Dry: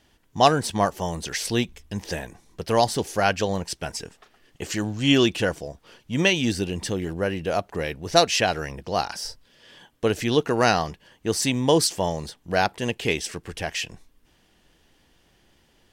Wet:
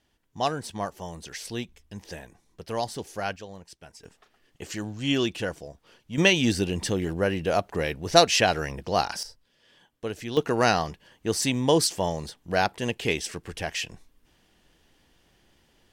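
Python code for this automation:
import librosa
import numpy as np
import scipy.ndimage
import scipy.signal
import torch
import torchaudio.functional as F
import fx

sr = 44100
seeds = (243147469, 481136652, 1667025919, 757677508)

y = fx.gain(x, sr, db=fx.steps((0.0, -9.5), (3.36, -17.0), (4.04, -6.5), (6.18, 0.5), (9.23, -10.0), (10.37, -2.0)))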